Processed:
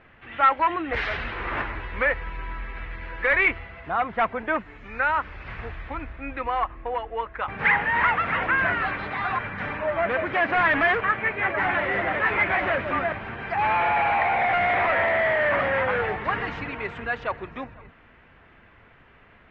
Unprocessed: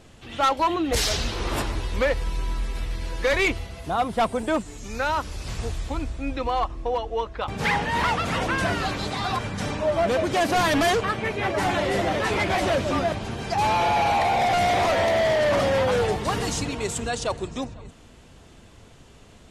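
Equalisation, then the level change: ladder low-pass 2500 Hz, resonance 35%; bell 1800 Hz +10 dB 2.4 oct; 0.0 dB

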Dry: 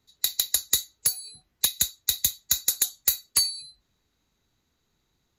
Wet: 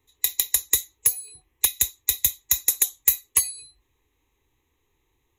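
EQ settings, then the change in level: dynamic EQ 5200 Hz, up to +8 dB, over -44 dBFS, Q 3.8; fixed phaser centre 960 Hz, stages 8; +5.5 dB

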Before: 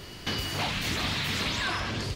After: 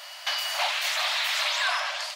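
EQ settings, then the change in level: brick-wall FIR high-pass 560 Hz; +4.5 dB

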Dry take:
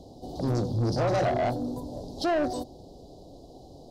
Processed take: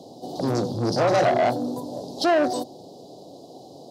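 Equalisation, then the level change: HPF 120 Hz 24 dB/oct; low shelf 250 Hz -7.5 dB; +7.5 dB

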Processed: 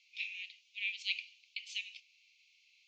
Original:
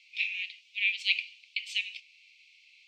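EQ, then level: band-pass 6800 Hz, Q 4.6; air absorption 220 m; +15.0 dB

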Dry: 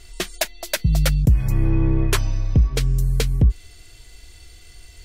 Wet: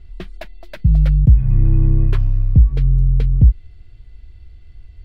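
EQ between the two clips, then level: air absorption 400 m; tone controls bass +14 dB, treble +2 dB; high shelf 6900 Hz +9 dB; -8.0 dB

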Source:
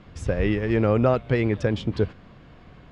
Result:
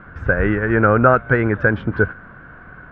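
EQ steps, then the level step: synth low-pass 1500 Hz, resonance Q 11; +4.0 dB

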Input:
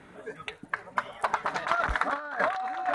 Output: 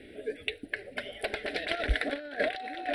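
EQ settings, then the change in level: fixed phaser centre 390 Hz, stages 4; fixed phaser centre 2900 Hz, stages 4; +7.5 dB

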